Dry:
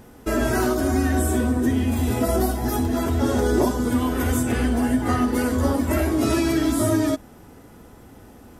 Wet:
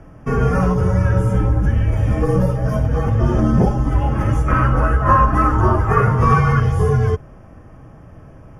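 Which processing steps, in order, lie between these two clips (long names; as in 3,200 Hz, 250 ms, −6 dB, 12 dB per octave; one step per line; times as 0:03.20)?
0:04.48–0:06.60: parametric band 1,400 Hz +14.5 dB 0.61 octaves
frequency shifter −190 Hz
moving average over 11 samples
level +5.5 dB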